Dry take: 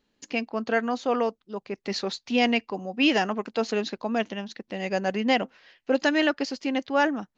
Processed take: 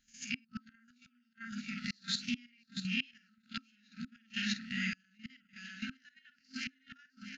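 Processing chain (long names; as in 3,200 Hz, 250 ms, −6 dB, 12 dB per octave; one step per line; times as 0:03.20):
peak hold with a rise ahead of every peak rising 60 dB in 0.32 s
mains-hum notches 50/100/150/200/250 Hz
double-tracking delay 49 ms −5.5 dB
feedback echo with a high-pass in the loop 653 ms, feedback 48%, high-pass 250 Hz, level −10 dB
gate with flip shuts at −16 dBFS, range −35 dB
output level in coarse steps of 11 dB
brick-wall band-stop 260–1,300 Hz
level +2 dB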